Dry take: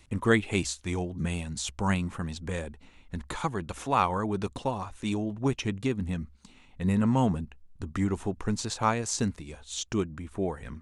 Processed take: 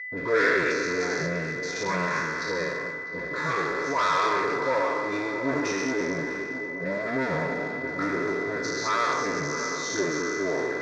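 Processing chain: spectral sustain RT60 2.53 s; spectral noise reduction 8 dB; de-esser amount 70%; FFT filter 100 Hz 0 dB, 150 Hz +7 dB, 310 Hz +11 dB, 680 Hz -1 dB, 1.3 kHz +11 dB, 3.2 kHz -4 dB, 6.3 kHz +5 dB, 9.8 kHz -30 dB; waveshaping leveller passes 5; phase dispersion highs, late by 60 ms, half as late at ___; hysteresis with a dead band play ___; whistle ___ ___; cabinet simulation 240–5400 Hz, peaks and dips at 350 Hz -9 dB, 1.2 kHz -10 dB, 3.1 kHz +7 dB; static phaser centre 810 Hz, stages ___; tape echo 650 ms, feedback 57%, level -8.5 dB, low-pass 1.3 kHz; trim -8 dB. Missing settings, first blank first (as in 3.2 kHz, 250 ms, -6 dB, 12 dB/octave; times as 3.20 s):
1.1 kHz, -17 dBFS, 2 kHz, -22 dBFS, 6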